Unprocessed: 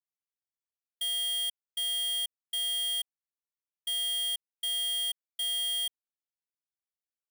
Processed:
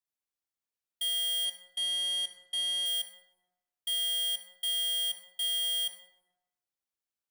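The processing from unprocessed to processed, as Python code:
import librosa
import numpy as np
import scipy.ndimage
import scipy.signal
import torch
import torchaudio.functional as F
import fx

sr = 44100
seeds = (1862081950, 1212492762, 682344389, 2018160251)

y = fx.lowpass(x, sr, hz=9700.0, slope=12, at=(1.45, 2.86))
y = fx.rev_plate(y, sr, seeds[0], rt60_s=1.1, hf_ratio=0.5, predelay_ms=0, drr_db=6.0)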